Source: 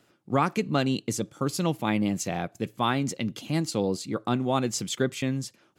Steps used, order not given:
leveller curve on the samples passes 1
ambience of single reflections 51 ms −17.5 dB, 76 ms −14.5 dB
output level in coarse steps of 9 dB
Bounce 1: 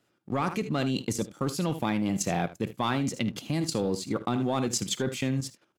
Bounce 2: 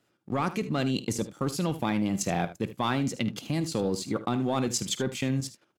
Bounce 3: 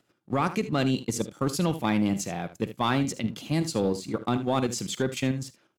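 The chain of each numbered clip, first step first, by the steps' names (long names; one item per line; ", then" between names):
ambience of single reflections, then leveller curve on the samples, then output level in coarse steps
leveller curve on the samples, then output level in coarse steps, then ambience of single reflections
output level in coarse steps, then ambience of single reflections, then leveller curve on the samples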